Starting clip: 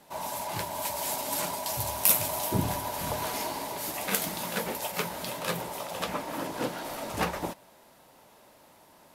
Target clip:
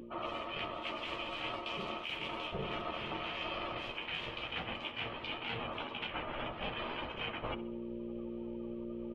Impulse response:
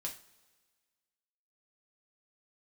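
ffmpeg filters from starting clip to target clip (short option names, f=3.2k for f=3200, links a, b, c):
-filter_complex "[0:a]aeval=exprs='val(0)+0.00398*(sin(2*PI*60*n/s)+sin(2*PI*2*60*n/s)/2+sin(2*PI*3*60*n/s)/3+sin(2*PI*4*60*n/s)/4+sin(2*PI*5*60*n/s)/5)':c=same,afftdn=nr=23:nf=-45,lowpass=f=2.8k:t=q:w=13,asplit=2[a][b];[b]adelay=13,volume=-5.5dB[c];[a][c]amix=inputs=2:normalize=0,alimiter=limit=-15.5dB:level=0:latency=1:release=242,areverse,acompressor=threshold=-43dB:ratio=8,areverse,aemphasis=mode=reproduction:type=50kf,aeval=exprs='val(0)*sin(2*PI*290*n/s)':c=same,acompressor=mode=upward:threshold=-57dB:ratio=2.5,asplit=2[d][e];[e]aecho=0:1:66|132|198|264:0.141|0.0622|0.0273|0.012[f];[d][f]amix=inputs=2:normalize=0,volume=9.5dB"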